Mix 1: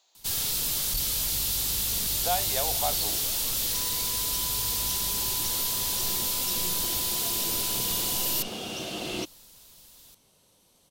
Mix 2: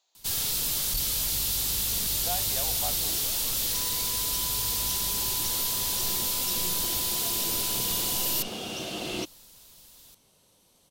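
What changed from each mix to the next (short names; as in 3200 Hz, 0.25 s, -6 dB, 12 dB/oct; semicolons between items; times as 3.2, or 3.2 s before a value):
speech -7.0 dB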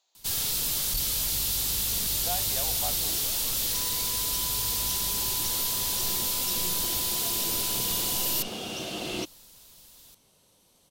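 none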